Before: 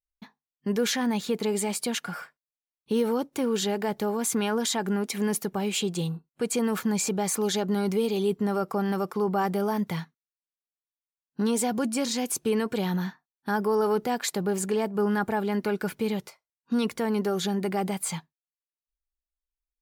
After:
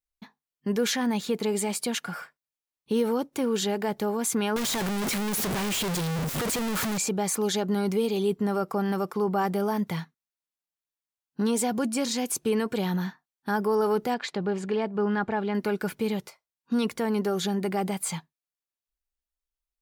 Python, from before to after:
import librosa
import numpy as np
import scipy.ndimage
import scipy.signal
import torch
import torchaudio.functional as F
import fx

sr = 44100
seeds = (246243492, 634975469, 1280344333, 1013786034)

y = fx.clip_1bit(x, sr, at=(4.56, 6.98))
y = fx.cheby1_lowpass(y, sr, hz=3400.0, order=2, at=(14.14, 15.55))